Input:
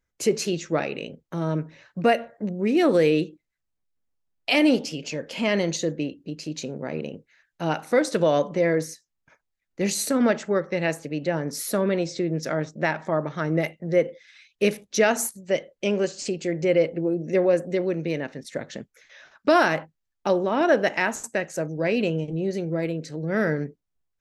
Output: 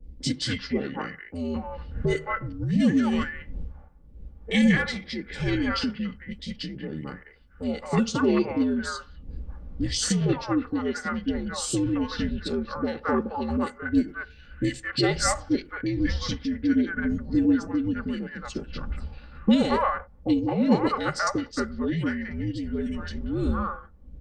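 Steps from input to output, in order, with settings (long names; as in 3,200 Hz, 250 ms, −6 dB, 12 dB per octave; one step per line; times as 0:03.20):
wind on the microphone 94 Hz −35 dBFS
comb filter 3.3 ms, depth 56%
frequency shifter −80 Hz
low-shelf EQ 200 Hz −8 dB
three-band delay without the direct sound lows, highs, mids 30/220 ms, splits 770/2,800 Hz
formants moved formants −5 semitones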